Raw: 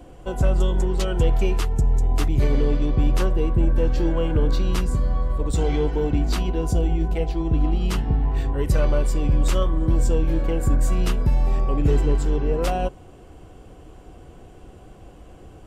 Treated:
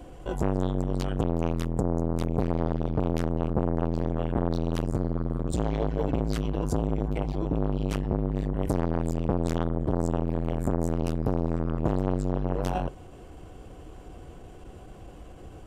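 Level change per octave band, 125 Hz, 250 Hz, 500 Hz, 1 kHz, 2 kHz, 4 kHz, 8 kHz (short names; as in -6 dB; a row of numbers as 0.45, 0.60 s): -5.5, -1.0, -3.5, -2.5, -8.0, -10.0, -9.5 dB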